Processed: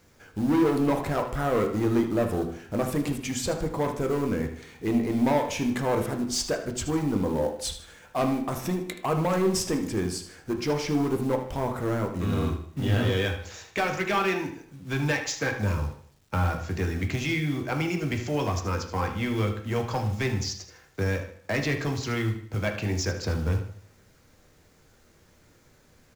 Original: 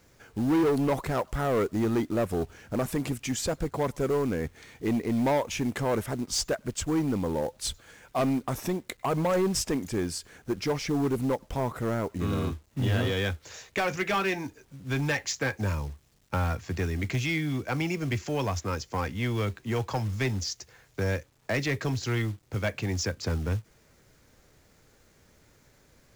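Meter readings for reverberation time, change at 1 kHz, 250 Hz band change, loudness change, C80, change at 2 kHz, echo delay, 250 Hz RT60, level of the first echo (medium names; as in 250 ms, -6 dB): 0.55 s, +2.0 dB, +2.0 dB, +1.5 dB, 12.0 dB, +1.5 dB, 77 ms, 0.55 s, -12.0 dB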